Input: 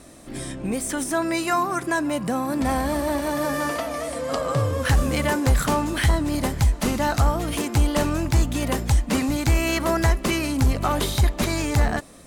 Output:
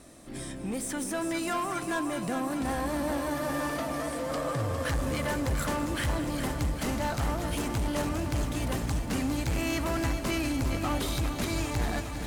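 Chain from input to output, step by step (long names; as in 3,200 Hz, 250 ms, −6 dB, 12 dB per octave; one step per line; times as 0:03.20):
soft clipping −20.5 dBFS, distortion −10 dB
delay that swaps between a low-pass and a high-pass 103 ms, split 840 Hz, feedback 88%, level −13 dB
feedback echo at a low word length 405 ms, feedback 80%, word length 9 bits, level −10 dB
level −5.5 dB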